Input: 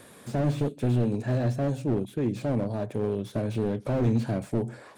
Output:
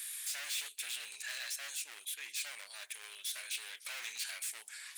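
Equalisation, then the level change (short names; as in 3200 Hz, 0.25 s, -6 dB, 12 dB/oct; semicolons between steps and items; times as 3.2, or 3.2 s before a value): resonant high-pass 2100 Hz, resonance Q 1.6; differentiator; +12.0 dB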